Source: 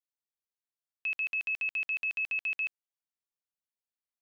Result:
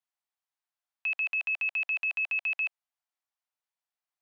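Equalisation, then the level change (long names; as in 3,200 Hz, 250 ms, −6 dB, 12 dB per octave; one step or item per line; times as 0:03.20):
Butterworth high-pass 660 Hz 48 dB per octave
spectral tilt −3 dB per octave
+6.5 dB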